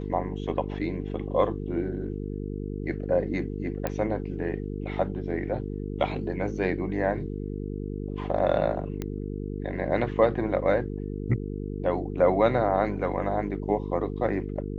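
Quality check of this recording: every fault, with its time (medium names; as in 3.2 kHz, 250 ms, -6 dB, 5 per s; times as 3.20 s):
buzz 50 Hz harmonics 9 -33 dBFS
3.87 s: pop -14 dBFS
9.02 s: pop -18 dBFS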